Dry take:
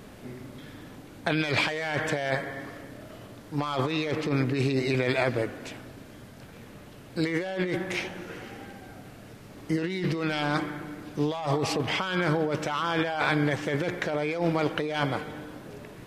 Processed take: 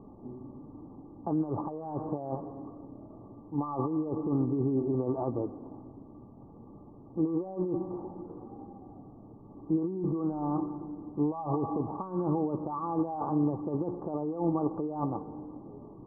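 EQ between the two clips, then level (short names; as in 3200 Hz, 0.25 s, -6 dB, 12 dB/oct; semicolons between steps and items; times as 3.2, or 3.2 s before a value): rippled Chebyshev low-pass 1200 Hz, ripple 9 dB; low shelf 140 Hz +4.5 dB; 0.0 dB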